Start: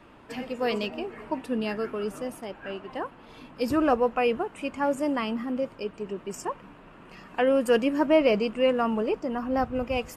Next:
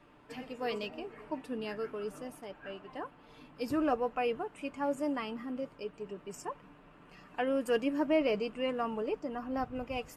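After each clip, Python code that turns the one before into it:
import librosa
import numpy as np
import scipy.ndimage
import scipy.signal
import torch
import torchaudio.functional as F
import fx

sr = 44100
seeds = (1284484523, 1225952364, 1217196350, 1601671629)

y = x + 0.35 * np.pad(x, (int(6.8 * sr / 1000.0), 0))[:len(x)]
y = F.gain(torch.from_numpy(y), -8.5).numpy()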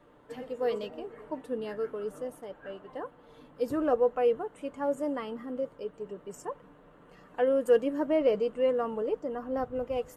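y = fx.graphic_eq_31(x, sr, hz=(500, 2500, 5000), db=(10, -10, -8))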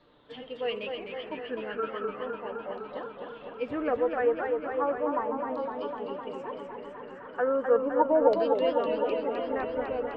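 y = fx.filter_lfo_lowpass(x, sr, shape='saw_down', hz=0.36, low_hz=780.0, high_hz=4200.0, q=7.7)
y = fx.echo_warbled(y, sr, ms=254, feedback_pct=78, rate_hz=2.8, cents=106, wet_db=-5.5)
y = F.gain(torch.from_numpy(y), -3.0).numpy()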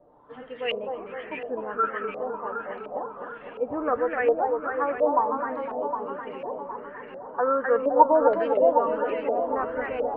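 y = fx.filter_lfo_lowpass(x, sr, shape='saw_up', hz=1.4, low_hz=630.0, high_hz=2600.0, q=3.9)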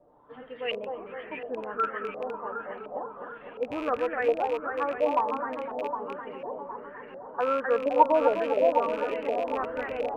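y = fx.rattle_buzz(x, sr, strikes_db=-39.0, level_db=-27.0)
y = F.gain(torch.from_numpy(y), -3.0).numpy()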